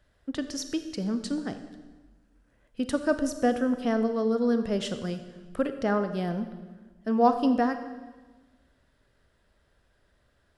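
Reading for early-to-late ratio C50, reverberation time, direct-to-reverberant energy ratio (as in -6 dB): 10.0 dB, 1.3 s, 9.0 dB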